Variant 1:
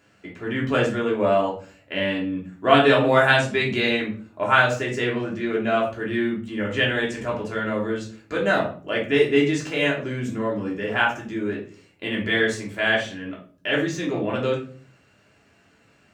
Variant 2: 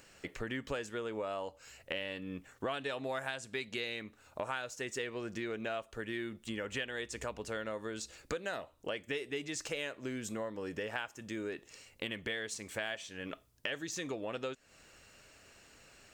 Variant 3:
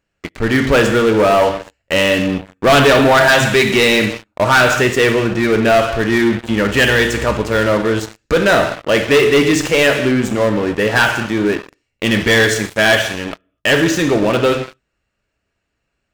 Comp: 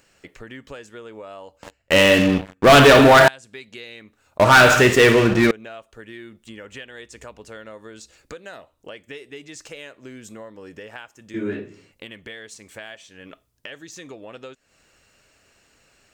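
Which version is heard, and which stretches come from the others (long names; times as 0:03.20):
2
0:01.63–0:03.28: punch in from 3
0:04.38–0:05.51: punch in from 3
0:11.34–0:11.92: punch in from 1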